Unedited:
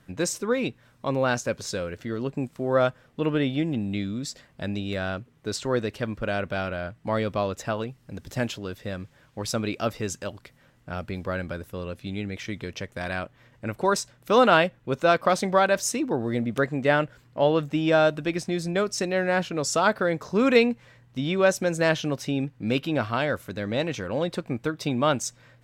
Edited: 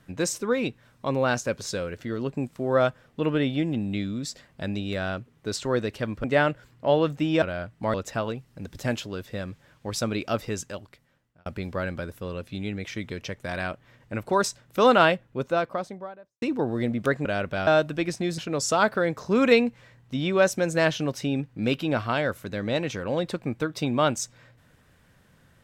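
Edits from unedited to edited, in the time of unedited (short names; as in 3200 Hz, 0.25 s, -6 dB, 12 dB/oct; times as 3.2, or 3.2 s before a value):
6.24–6.66 swap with 16.77–17.95
7.18–7.46 cut
9.98–10.98 fade out
14.5–15.94 studio fade out
18.66–19.42 cut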